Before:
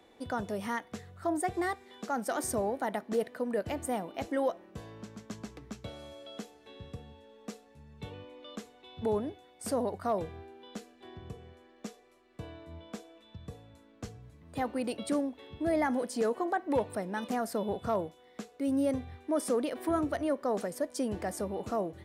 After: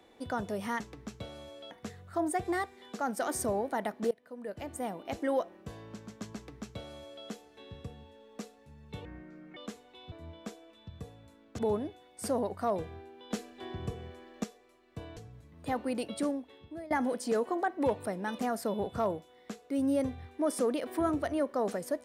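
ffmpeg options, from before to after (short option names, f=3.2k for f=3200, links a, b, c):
-filter_complex "[0:a]asplit=12[a][b][c][d][e][f][g][h][i][j][k][l];[a]atrim=end=0.802[m];[b]atrim=start=5.438:end=6.352[n];[c]atrim=start=0.798:end=3.2,asetpts=PTS-STARTPTS,afade=t=out:st=2.398:d=0.004:c=hsin:silence=0.0668344[o];[d]atrim=start=3.2:end=8.144,asetpts=PTS-STARTPTS,afade=t=in:d=1.08:silence=0.0668344[p];[e]atrim=start=8.14:end=8.46,asetpts=PTS-STARTPTS,asetrate=27342,aresample=44100,atrim=end_sample=22761,asetpts=PTS-STARTPTS[q];[f]atrim=start=8.456:end=9.012[r];[g]atrim=start=12.588:end=14.062[s];[h]atrim=start=9.008:end=10.732[t];[i]atrim=start=10.728:end=11.862,asetpts=PTS-STARTPTS,volume=7dB[u];[j]atrim=start=11.858:end=12.592[v];[k]atrim=start=14.058:end=15.8,asetpts=PTS-STARTPTS,afade=t=out:st=0.722:d=1.02:c=qsin:silence=0.0668344[w];[l]atrim=start=15.8,asetpts=PTS-STARTPTS,afade=t=in:d=0.004:c=hsin:silence=0.0668344[x];[m][n]acrossfade=d=0.004:c1=hsin:c2=hsin[y];[o][p]concat=n=2:v=0:a=1[z];[y][z]acrossfade=d=0.004:c1=hsin:c2=hsin[aa];[aa][q]acrossfade=d=0.004:c1=hsin:c2=hsin[ab];[ab][r]acrossfade=d=0.004:c1=hsin:c2=hsin[ac];[ac][s]acrossfade=d=0.004:c1=hsin:c2=hsin[ad];[ad][t]acrossfade=d=0.004:c1=hsin:c2=hsin[ae];[ae][u]acrossfade=d=0.004:c1=hsin:c2=hsin[af];[af][v]acrossfade=d=0.004:c1=hsin:c2=hsin[ag];[w][x]concat=n=2:v=0:a=1[ah];[ag][ah]acrossfade=d=0.004:c1=hsin:c2=hsin"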